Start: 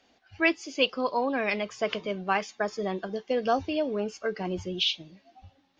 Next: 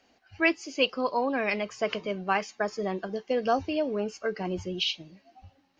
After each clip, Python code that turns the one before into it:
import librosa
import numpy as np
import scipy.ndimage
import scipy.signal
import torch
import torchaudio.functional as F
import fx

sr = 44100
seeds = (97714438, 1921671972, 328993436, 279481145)

y = fx.notch(x, sr, hz=3500.0, q=7.0)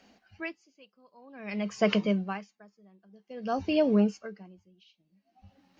y = fx.peak_eq(x, sr, hz=200.0, db=12.5, octaves=0.36)
y = y * 10.0 ** (-37 * (0.5 - 0.5 * np.cos(2.0 * np.pi * 0.52 * np.arange(len(y)) / sr)) / 20.0)
y = y * 10.0 ** (3.5 / 20.0)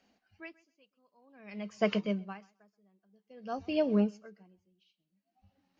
y = fx.echo_feedback(x, sr, ms=129, feedback_pct=16, wet_db=-21.5)
y = fx.upward_expand(y, sr, threshold_db=-35.0, expansion=1.5)
y = y * 10.0 ** (-3.0 / 20.0)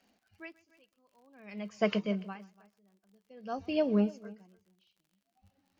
y = x + 10.0 ** (-21.0 / 20.0) * np.pad(x, (int(290 * sr / 1000.0), 0))[:len(x)]
y = fx.dmg_crackle(y, sr, seeds[0], per_s=61.0, level_db=-57.0)